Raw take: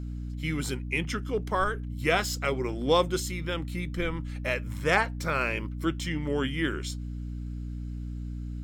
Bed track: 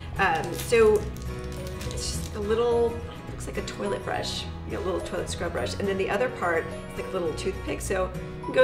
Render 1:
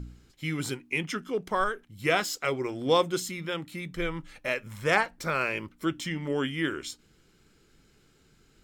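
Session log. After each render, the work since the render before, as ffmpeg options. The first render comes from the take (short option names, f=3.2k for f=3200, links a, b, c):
-af "bandreject=f=60:t=h:w=4,bandreject=f=120:t=h:w=4,bandreject=f=180:t=h:w=4,bandreject=f=240:t=h:w=4,bandreject=f=300:t=h:w=4"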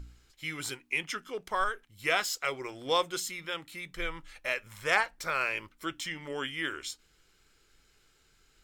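-af "equalizer=f=190:w=0.49:g=-14"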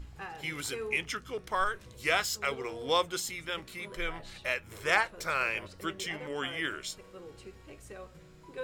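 -filter_complex "[1:a]volume=-19.5dB[a];[0:a][a]amix=inputs=2:normalize=0"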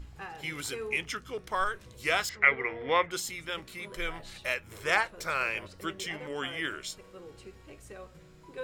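-filter_complex "[0:a]asettb=1/sr,asplit=3[a][b][c];[a]atrim=end=2.294[d];[b]atrim=start=2.29:end=3.11,asetpts=PTS-STARTPTS,afade=t=in:d=0.004:c=qsin,afade=t=out:st=0.816:d=0.004:c=qsin,lowpass=f=2k:t=q:w=9.9[e];[c]atrim=start=3.106[f];[d][e]acrossfade=d=0.004:c1=hsin:c2=qsin[g];[g][f]acrossfade=d=0.004:c1=qsin:c2=hsin,asettb=1/sr,asplit=3[h][i][j];[h]atrim=end=3.944[k];[i]atrim=start=3.94:end=4.55,asetpts=PTS-STARTPTS,afade=t=in:d=0.004:c=qsin,afade=t=out:st=0.606:d=0.004:c=qsin,highshelf=f=6k:g=5.5[l];[j]atrim=start=4.546[m];[k][l]acrossfade=d=0.004:c1=hsin:c2=qsin[n];[n][m]acrossfade=d=0.004:c1=qsin:c2=hsin"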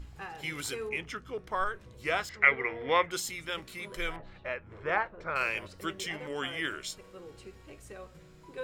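-filter_complex "[0:a]asettb=1/sr,asplit=3[a][b][c];[a]atrim=end=0.894[d];[b]atrim=start=0.89:end=2.34,asetpts=PTS-STARTPTS,afade=t=in:d=0.004:c=qsin,afade=t=out:st=1.446:d=0.004:c=qsin,highshelf=f=2.7k:g=-10.5[e];[c]atrim=start=2.336[f];[d][e]acrossfade=d=0.004:c1=hsin:c2=qsin[g];[g][f]acrossfade=d=0.004:c1=qsin:c2=hsin,asettb=1/sr,asplit=3[h][i][j];[h]atrim=end=4.164[k];[i]atrim=start=4.16:end=5.36,asetpts=PTS-STARTPTS,afade=t=in:d=0.004:c=qsin,afade=t=out:st=1.196:d=0.004:c=qsin,lowpass=1.5k[l];[j]atrim=start=5.356[m];[k][l]acrossfade=d=0.004:c1=hsin:c2=qsin[n];[n][m]acrossfade=d=0.004:c1=qsin:c2=hsin"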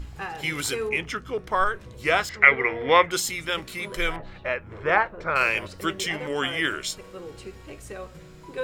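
-af "volume=8.5dB,alimiter=limit=-2dB:level=0:latency=1"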